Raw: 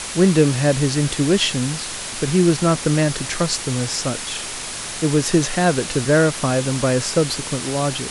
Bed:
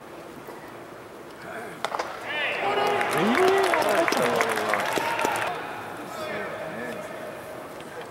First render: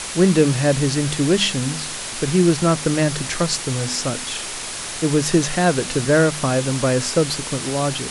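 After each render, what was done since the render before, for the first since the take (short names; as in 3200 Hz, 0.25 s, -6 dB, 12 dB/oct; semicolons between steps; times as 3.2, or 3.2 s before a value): de-hum 50 Hz, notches 5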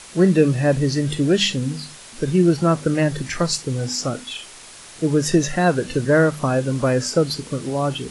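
noise print and reduce 12 dB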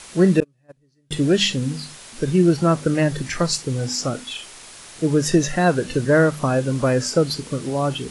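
0.4–1.11 gate -11 dBFS, range -42 dB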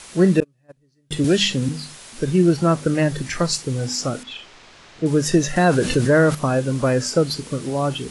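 1.24–1.69 three-band squash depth 40%; 4.23–5.06 air absorption 160 m; 5.56–6.35 fast leveller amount 50%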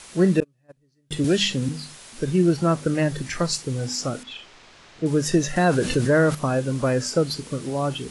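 gain -3 dB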